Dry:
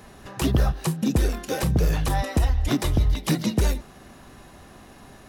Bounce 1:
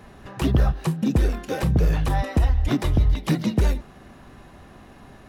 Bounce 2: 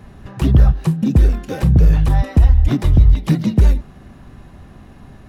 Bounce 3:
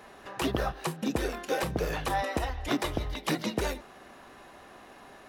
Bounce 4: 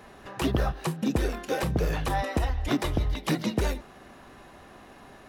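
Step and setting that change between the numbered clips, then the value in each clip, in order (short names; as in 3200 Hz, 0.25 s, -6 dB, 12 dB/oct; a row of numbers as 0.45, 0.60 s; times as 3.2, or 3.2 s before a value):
tone controls, bass: +2, +11, -15, -7 dB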